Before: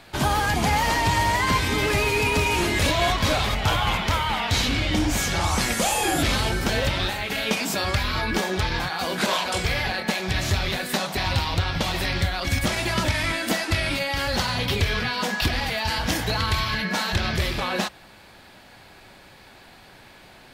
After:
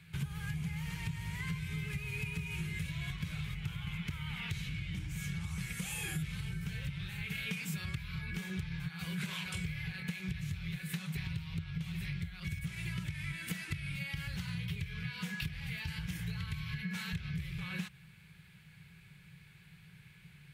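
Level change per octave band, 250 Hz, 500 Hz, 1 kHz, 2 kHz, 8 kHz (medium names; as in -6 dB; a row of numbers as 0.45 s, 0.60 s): -13.0 dB, -30.0 dB, -30.0 dB, -17.0 dB, -19.0 dB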